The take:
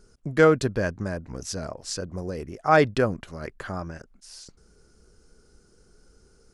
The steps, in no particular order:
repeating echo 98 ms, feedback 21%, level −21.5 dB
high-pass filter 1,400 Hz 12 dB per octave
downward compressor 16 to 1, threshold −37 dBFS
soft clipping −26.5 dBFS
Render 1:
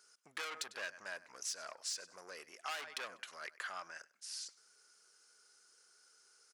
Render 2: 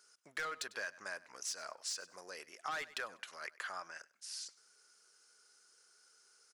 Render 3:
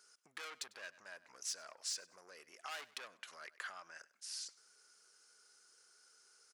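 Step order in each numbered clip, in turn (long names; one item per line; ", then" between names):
repeating echo, then soft clipping, then high-pass filter, then downward compressor
high-pass filter, then soft clipping, then repeating echo, then downward compressor
soft clipping, then repeating echo, then downward compressor, then high-pass filter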